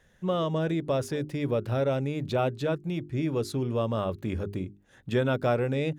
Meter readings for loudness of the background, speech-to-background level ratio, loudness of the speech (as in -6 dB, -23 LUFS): -49.0 LUFS, 20.0 dB, -29.0 LUFS